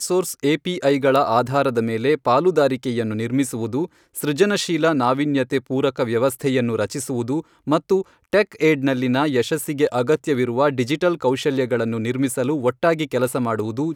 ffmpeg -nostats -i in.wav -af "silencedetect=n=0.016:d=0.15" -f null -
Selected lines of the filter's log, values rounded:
silence_start: 3.86
silence_end: 4.15 | silence_duration: 0.29
silence_start: 7.41
silence_end: 7.67 | silence_duration: 0.26
silence_start: 8.02
silence_end: 8.33 | silence_duration: 0.31